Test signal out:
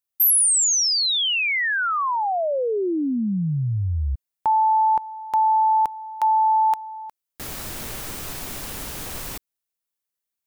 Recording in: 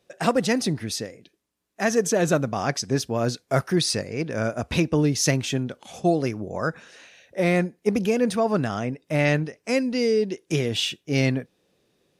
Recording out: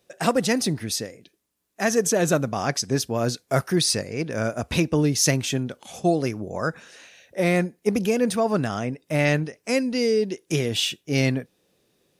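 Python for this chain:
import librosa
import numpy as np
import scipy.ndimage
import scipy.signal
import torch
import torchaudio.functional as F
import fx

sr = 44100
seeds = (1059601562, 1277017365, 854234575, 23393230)

y = fx.high_shelf(x, sr, hz=8300.0, db=9.0)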